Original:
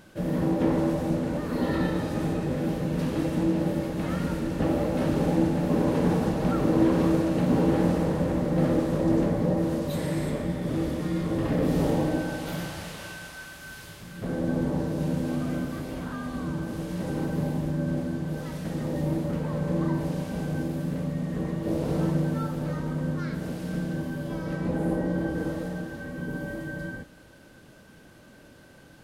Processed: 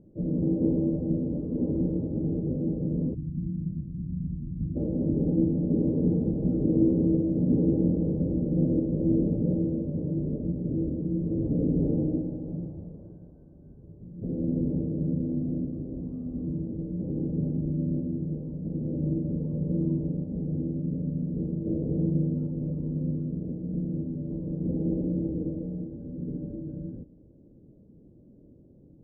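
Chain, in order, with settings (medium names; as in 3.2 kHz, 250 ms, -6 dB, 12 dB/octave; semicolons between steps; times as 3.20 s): inverse Chebyshev low-pass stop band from 2.6 kHz, stop band 80 dB, from 3.13 s stop band from 1.1 kHz, from 4.75 s stop band from 2.5 kHz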